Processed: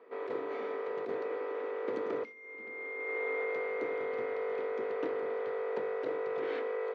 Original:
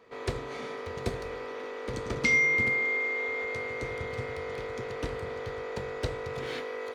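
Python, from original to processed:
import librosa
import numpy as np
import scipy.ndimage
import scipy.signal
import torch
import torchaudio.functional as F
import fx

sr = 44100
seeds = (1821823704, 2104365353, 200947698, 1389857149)

y = fx.ladder_highpass(x, sr, hz=270.0, resonance_pct=40)
y = fx.hum_notches(y, sr, base_hz=50, count=7)
y = fx.over_compress(y, sr, threshold_db=-39.0, ratio=-0.5)
y = scipy.signal.sosfilt(scipy.signal.butter(2, 2000.0, 'lowpass', fs=sr, output='sos'), y)
y = y * librosa.db_to_amplitude(5.5)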